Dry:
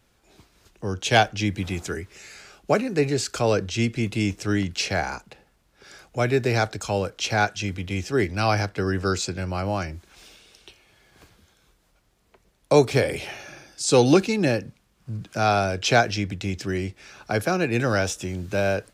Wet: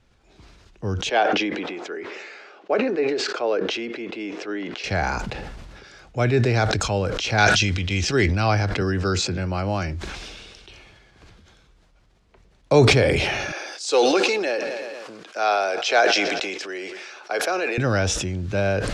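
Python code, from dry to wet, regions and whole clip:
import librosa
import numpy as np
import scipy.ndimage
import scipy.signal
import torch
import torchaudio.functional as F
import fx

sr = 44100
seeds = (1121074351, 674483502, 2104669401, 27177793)

y = fx.chain(x, sr, fx.highpass(hz=340.0, slope=24),
    fx.spacing_loss(db_at_10k=26), at=(1.09, 4.84))
y = fx.chain(y, sr, fx.peak_eq(hz=4800.0, db=9.5, octaves=2.8),
    fx.sustainer(db_per_s=72.0), at=(7.38, 8.26))
y = fx.chain(y, sr, fx.highpass(hz=85.0, slope=12),
    fx.band_squash(depth_pct=40), at=(8.81, 9.94))
y = fx.chain(y, sr, fx.highpass(hz=410.0, slope=24),
    fx.echo_feedback(ms=117, feedback_pct=58, wet_db=-23), at=(13.52, 17.78))
y = scipy.signal.sosfilt(scipy.signal.butter(2, 5700.0, 'lowpass', fs=sr, output='sos'), y)
y = fx.low_shelf(y, sr, hz=93.0, db=8.0)
y = fx.sustainer(y, sr, db_per_s=28.0)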